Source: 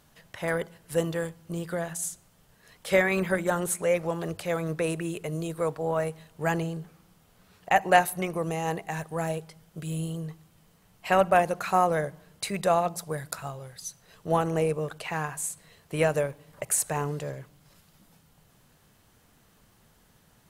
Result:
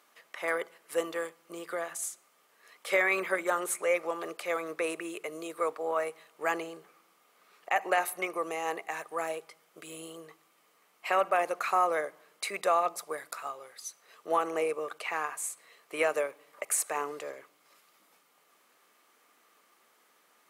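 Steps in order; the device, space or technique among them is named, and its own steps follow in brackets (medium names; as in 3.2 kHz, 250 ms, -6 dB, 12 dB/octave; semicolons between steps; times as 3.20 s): laptop speaker (high-pass 320 Hz 24 dB/octave; peaking EQ 1.2 kHz +11 dB 0.21 oct; peaking EQ 2.2 kHz +7 dB 0.41 oct; peak limiter -12 dBFS, peak gain reduction 8.5 dB); trim -3.5 dB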